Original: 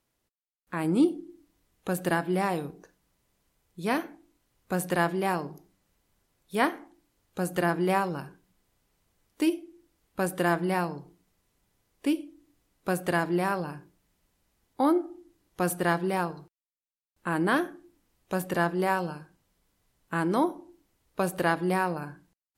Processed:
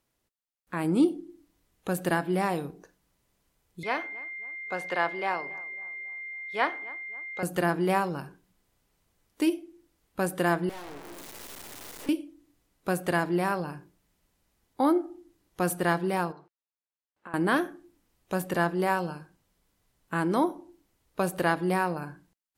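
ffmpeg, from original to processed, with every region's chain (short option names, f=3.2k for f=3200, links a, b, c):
-filter_complex "[0:a]asettb=1/sr,asplit=3[a][b][c];[a]atrim=end=3.834[d];[b]atrim=start=3.83:end=7.43,asetpts=PTS-STARTPTS,afade=t=in:d=0.004:c=qsin,afade=t=out:st=3.596:d=0.004:c=qsin,acrossover=split=430 5200:gain=0.141 1 0.0708[e][f][g];[e][f][g]amix=inputs=3:normalize=0,aeval=exprs='val(0)+0.0158*sin(2*PI*2100*n/s)':c=same,asplit=2[h][i];[i]adelay=271,lowpass=f=2.1k:p=1,volume=-20dB,asplit=2[j][k];[k]adelay=271,lowpass=f=2.1k:p=1,volume=0.47,asplit=2[l][m];[m]adelay=271,lowpass=f=2.1k:p=1,volume=0.47,asplit=2[n][o];[o]adelay=271,lowpass=f=2.1k:p=1,volume=0.47[p];[h][j][l][n][p]amix=inputs=5:normalize=0,atrim=end_sample=158760[q];[c]atrim=start=7.426[r];[d][q]acrossfade=d=0.004:c1=hsin:c2=qsin[s];[s][r]acrossfade=d=0.004:c1=qsin:c2=hsin,asettb=1/sr,asplit=3[t][u][v];[t]atrim=end=10.694[w];[u]atrim=start=10.69:end=12.09,asetpts=PTS-STARTPTS,afade=t=in:d=0.004:c=qsin,afade=t=out:st=1.396:d=0.004:c=qsin,aeval=exprs='val(0)+0.5*0.0316*sgn(val(0))':c=same,highpass=f=270:w=0.5412,highpass=f=270:w=1.3066,aeval=exprs='(tanh(100*val(0)+0.75)-tanh(0.75))/100':c=same[x];[v]atrim=start=12.086[y];[w][x]acrossfade=d=0.004:c1=hsin:c2=qsin[z];[z][y]acrossfade=d=0.004:c1=qsin:c2=hsin,asettb=1/sr,asplit=3[aa][ab][ac];[aa]atrim=end=16.324[ad];[ab]atrim=start=16.32:end=17.34,asetpts=PTS-STARTPTS,afade=t=in:d=0.004:c=qsin,afade=t=out:st=1.016:d=0.004:c=qsin,acompressor=threshold=-37dB:ratio=8:attack=3.2:release=140:knee=1:detection=peak,bandpass=f=960:t=q:w=0.55[ae];[ac]atrim=start=17.336[af];[ad][ae]acrossfade=d=0.004:c1=hsin:c2=qsin[ag];[ag][af]acrossfade=d=0.004:c1=qsin:c2=hsin"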